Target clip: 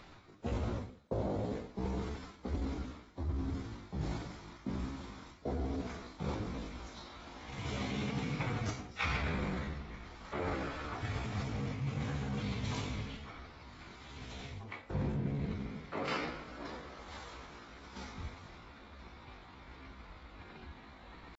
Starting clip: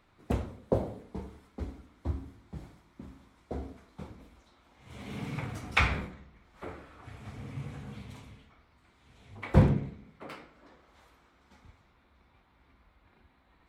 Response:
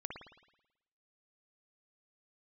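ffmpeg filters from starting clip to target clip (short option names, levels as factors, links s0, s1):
-af "atempo=0.64,areverse,acompressor=threshold=0.00562:ratio=10,areverse,equalizer=f=5000:w=1.5:g=5,volume=3.76" -ar 24000 -c:a aac -b:a 24k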